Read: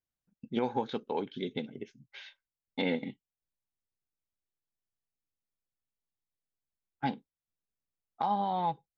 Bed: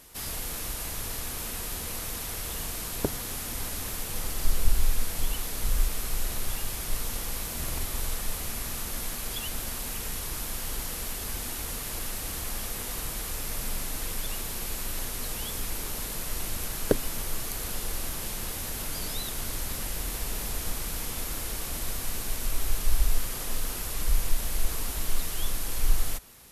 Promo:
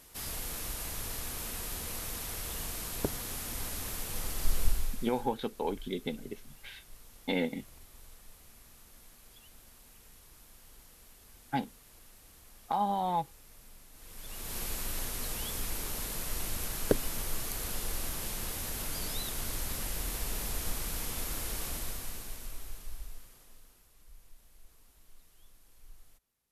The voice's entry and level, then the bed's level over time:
4.50 s, 0.0 dB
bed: 4.65 s -4 dB
5.34 s -22.5 dB
13.91 s -22.5 dB
14.57 s -3 dB
21.67 s -3 dB
23.90 s -30.5 dB

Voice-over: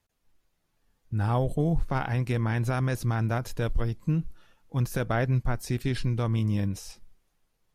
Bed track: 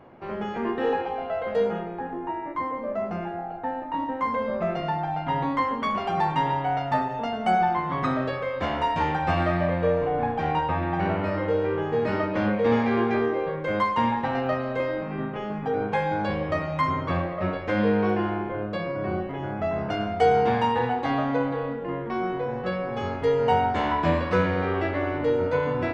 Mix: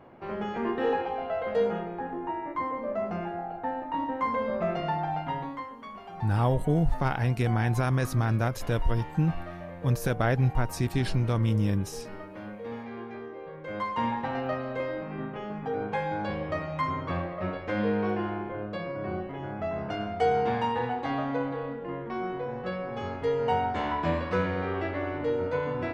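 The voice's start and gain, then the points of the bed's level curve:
5.10 s, +1.0 dB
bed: 5.16 s -2 dB
5.74 s -16.5 dB
13.29 s -16.5 dB
14.04 s -5 dB

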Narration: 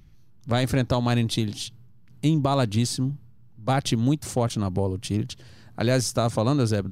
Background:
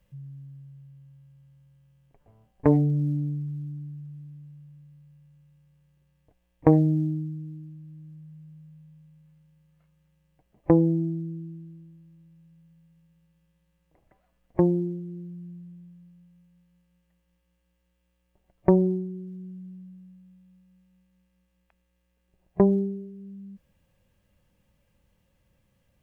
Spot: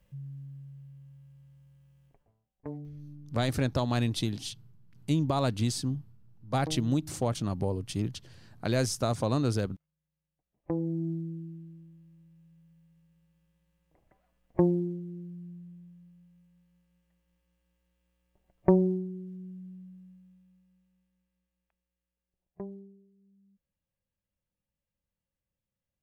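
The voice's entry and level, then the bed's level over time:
2.85 s, -5.5 dB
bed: 2.08 s 0 dB
2.44 s -20.5 dB
10.46 s -20.5 dB
11.11 s -3 dB
20.11 s -3 dB
22.79 s -22.5 dB

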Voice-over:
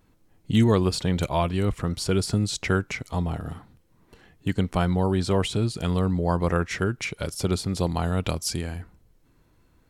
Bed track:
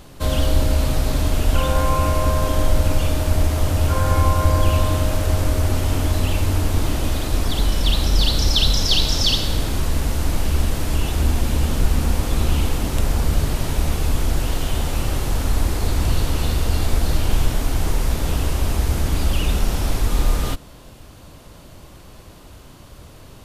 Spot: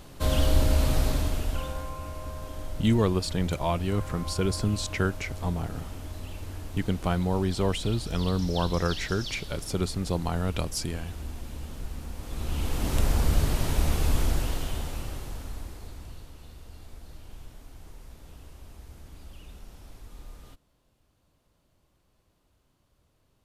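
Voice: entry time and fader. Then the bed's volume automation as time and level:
2.30 s, -3.5 dB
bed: 1.04 s -4.5 dB
1.94 s -19 dB
12.14 s -19 dB
12.92 s -4.5 dB
14.21 s -4.5 dB
16.36 s -27 dB

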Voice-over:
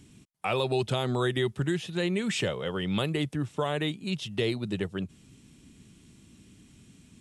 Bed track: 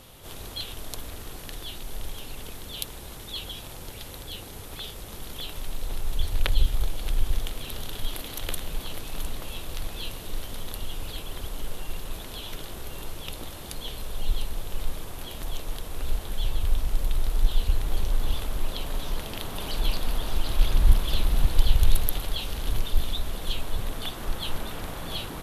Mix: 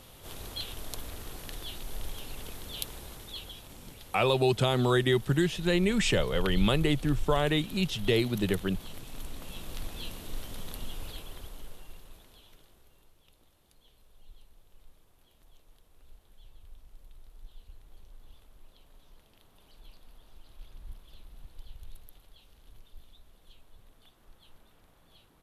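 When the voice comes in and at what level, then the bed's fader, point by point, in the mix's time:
3.70 s, +2.5 dB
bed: 2.96 s -3 dB
3.71 s -9.5 dB
9.21 s -9.5 dB
9.71 s -5.5 dB
11.05 s -5.5 dB
13.13 s -27.5 dB

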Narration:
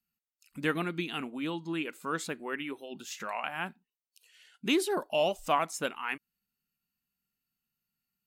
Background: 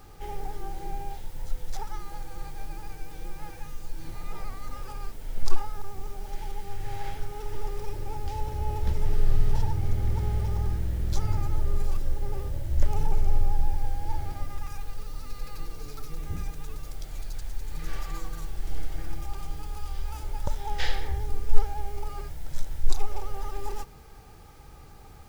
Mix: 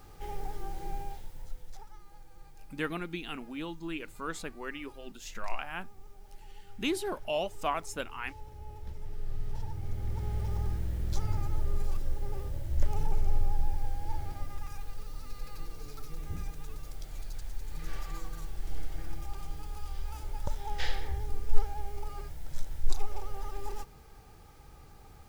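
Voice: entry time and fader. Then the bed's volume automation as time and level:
2.15 s, -4.0 dB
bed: 0.99 s -3 dB
1.92 s -15.5 dB
9.12 s -15.5 dB
10.53 s -4.5 dB

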